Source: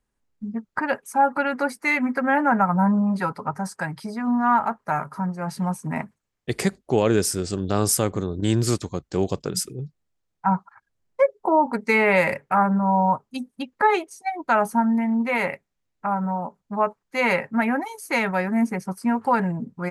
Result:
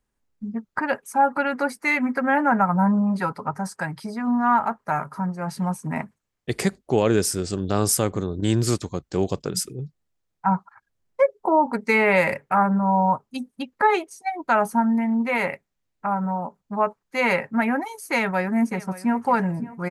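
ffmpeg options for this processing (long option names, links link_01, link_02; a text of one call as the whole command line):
ffmpeg -i in.wav -filter_complex "[0:a]asplit=2[link_01][link_02];[link_02]afade=type=in:start_time=18.14:duration=0.01,afade=type=out:start_time=19.27:duration=0.01,aecho=0:1:570|1140|1710:0.133352|0.0400056|0.0120017[link_03];[link_01][link_03]amix=inputs=2:normalize=0" out.wav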